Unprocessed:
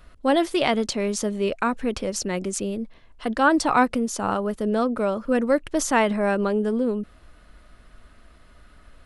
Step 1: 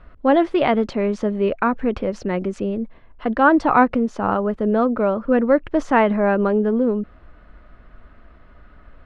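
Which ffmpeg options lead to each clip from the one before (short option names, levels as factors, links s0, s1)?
-af "lowpass=1900,volume=1.68"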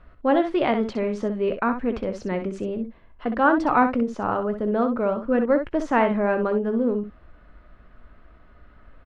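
-af "aecho=1:1:17|63:0.2|0.376,volume=0.596"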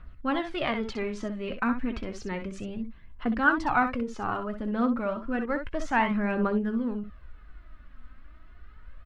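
-af "equalizer=f=510:t=o:w=1.9:g=-11.5,aphaser=in_gain=1:out_gain=1:delay=4:decay=0.46:speed=0.31:type=triangular"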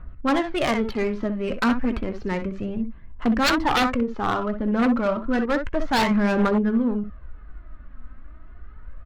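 -af "aeval=exprs='0.0841*(abs(mod(val(0)/0.0841+3,4)-2)-1)':c=same,equalizer=f=4300:t=o:w=0.3:g=3.5,adynamicsmooth=sensitivity=4.5:basefreq=1700,volume=2.37"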